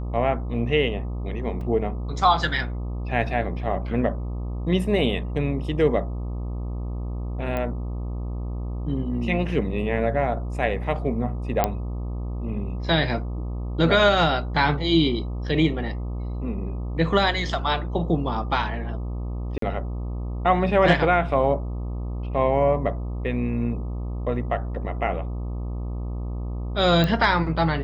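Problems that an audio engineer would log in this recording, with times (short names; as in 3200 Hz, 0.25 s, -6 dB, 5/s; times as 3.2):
buzz 60 Hz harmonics 21 -29 dBFS
1.61 gap 2.9 ms
7.57 pop -16 dBFS
11.64 pop -6 dBFS
19.58–19.62 gap 43 ms
27.04 pop -11 dBFS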